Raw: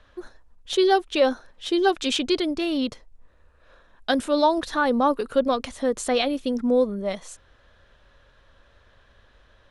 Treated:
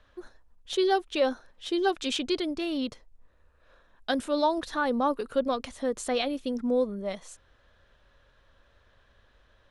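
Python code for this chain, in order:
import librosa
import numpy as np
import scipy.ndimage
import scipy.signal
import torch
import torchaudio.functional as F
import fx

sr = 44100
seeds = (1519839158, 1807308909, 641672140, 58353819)

y = F.gain(torch.from_numpy(x), -5.5).numpy()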